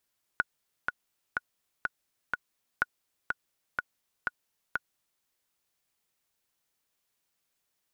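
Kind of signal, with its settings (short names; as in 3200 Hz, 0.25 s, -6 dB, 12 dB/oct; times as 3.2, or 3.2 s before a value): metronome 124 bpm, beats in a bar 5, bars 2, 1460 Hz, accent 4 dB -11.5 dBFS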